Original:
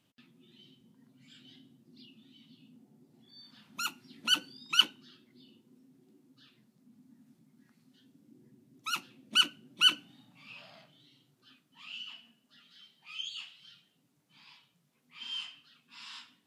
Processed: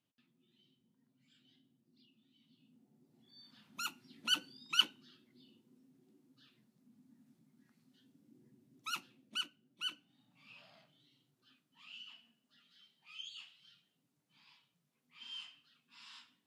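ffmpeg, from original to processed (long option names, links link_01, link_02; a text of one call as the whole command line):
ffmpeg -i in.wav -af "volume=2.5dB,afade=type=in:start_time=2.31:duration=1.15:silence=0.375837,afade=type=out:start_time=8.87:duration=0.61:silence=0.281838,afade=type=in:start_time=10.06:duration=0.41:silence=0.398107" out.wav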